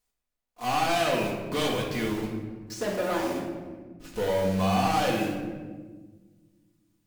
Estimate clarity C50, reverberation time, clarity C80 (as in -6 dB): 3.5 dB, 1.5 s, 6.0 dB